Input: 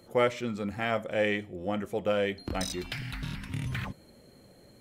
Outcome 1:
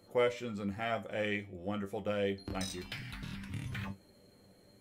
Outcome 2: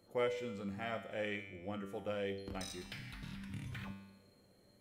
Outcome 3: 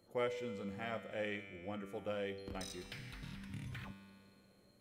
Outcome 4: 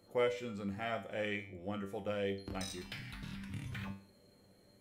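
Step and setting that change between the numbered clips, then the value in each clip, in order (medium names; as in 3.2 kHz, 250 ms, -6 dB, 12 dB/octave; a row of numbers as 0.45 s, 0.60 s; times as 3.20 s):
feedback comb, decay: 0.18 s, 1 s, 2.2 s, 0.44 s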